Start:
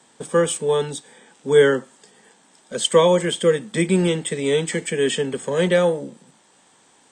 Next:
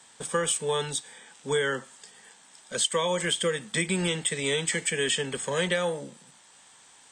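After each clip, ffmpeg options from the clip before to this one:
-af "equalizer=f=300:t=o:w=2.7:g=-12.5,acompressor=threshold=0.0562:ratio=12,volume=1.41"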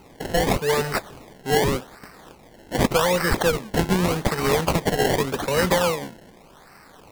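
-af "acrusher=samples=25:mix=1:aa=0.000001:lfo=1:lforange=25:lforate=0.85,volume=2.11"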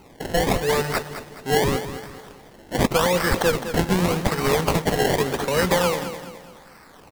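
-af "aecho=1:1:210|420|630|840:0.282|0.116|0.0474|0.0194"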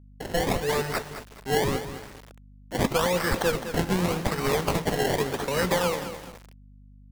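-af "flanger=delay=7:depth=2.8:regen=-85:speed=1.6:shape=triangular,aeval=exprs='val(0)*gte(abs(val(0)),0.00944)':c=same,aeval=exprs='val(0)+0.00355*(sin(2*PI*50*n/s)+sin(2*PI*2*50*n/s)/2+sin(2*PI*3*50*n/s)/3+sin(2*PI*4*50*n/s)/4+sin(2*PI*5*50*n/s)/5)':c=same"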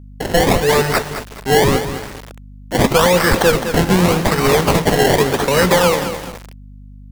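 -af "aeval=exprs='0.335*sin(PI/2*1.78*val(0)/0.335)':c=same,volume=1.58"

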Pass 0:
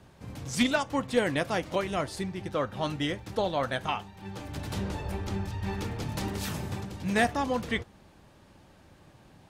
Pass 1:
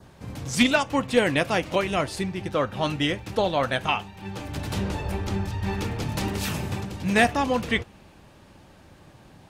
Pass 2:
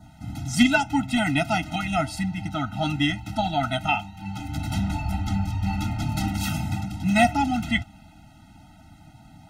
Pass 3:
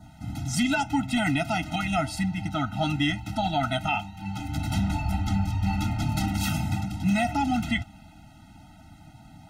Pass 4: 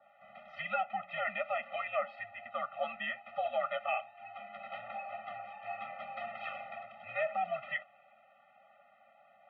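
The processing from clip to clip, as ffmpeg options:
-af "adynamicequalizer=threshold=0.00355:dfrequency=2600:dqfactor=3.6:tfrequency=2600:tqfactor=3.6:attack=5:release=100:ratio=0.375:range=3:mode=boostabove:tftype=bell,volume=1.78"
-af "afftfilt=real='re*eq(mod(floor(b*sr/1024/310),2),0)':imag='im*eq(mod(floor(b*sr/1024/310),2),0)':win_size=1024:overlap=0.75,volume=1.41"
-af "alimiter=limit=0.168:level=0:latency=1:release=52"
-af "highpass=f=540:t=q:w=0.5412,highpass=f=540:t=q:w=1.307,lowpass=f=2700:t=q:w=0.5176,lowpass=f=2700:t=q:w=0.7071,lowpass=f=2700:t=q:w=1.932,afreqshift=-82,volume=0.531"

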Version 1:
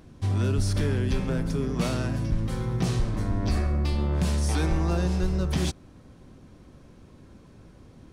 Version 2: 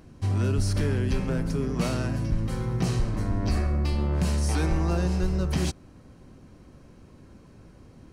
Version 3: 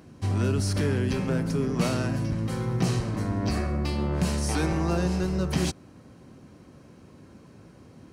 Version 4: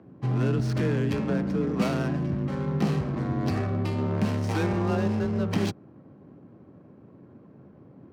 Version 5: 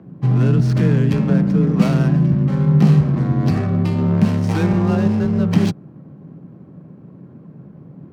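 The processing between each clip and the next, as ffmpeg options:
-af "bandreject=f=3500:w=9.6"
-af "highpass=100,volume=1.26"
-af "adynamicsmooth=sensitivity=7:basefreq=1000,afreqshift=28"
-af "equalizer=f=160:t=o:w=0.69:g=12.5,volume=1.68"

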